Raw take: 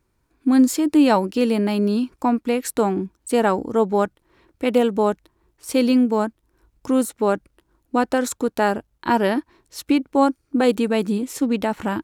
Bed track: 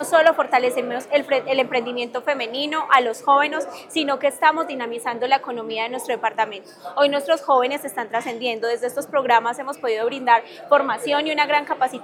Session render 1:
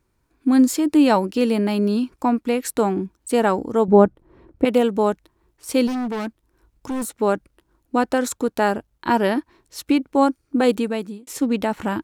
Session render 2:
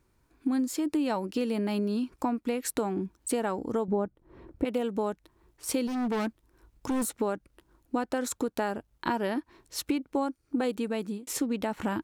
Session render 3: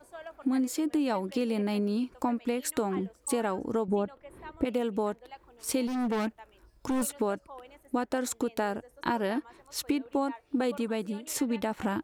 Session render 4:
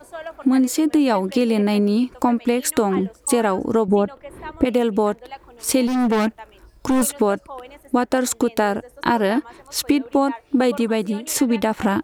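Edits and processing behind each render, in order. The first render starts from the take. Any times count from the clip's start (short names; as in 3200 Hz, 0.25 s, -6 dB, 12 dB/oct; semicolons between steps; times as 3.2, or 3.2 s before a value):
3.88–4.65 tilt shelf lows +10 dB, about 1300 Hz; 5.87–7.15 hard clip -23 dBFS; 10.72–11.27 fade out
compressor 5:1, threshold -27 dBFS, peak gain reduction 17.5 dB
add bed track -30 dB
gain +11 dB; limiter -3 dBFS, peak gain reduction 1 dB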